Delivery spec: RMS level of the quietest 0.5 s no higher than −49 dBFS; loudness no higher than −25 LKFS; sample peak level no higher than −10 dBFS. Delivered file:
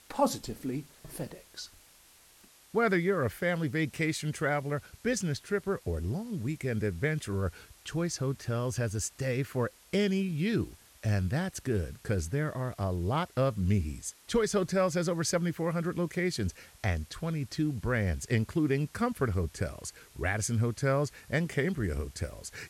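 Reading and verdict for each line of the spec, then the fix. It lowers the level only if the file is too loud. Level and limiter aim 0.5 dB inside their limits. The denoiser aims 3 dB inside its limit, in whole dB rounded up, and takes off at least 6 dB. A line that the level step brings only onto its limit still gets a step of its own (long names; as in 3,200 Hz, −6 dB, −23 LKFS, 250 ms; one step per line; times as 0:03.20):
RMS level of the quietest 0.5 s −59 dBFS: in spec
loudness −31.5 LKFS: in spec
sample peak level −15.5 dBFS: in spec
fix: no processing needed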